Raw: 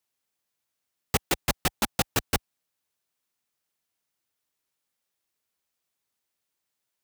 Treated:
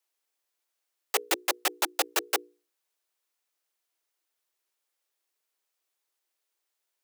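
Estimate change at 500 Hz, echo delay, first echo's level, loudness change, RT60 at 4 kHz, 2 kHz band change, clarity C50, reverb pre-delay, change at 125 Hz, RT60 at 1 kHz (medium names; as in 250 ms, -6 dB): -0.5 dB, no echo, no echo, -0.5 dB, no reverb, 0.0 dB, no reverb, no reverb, under -40 dB, no reverb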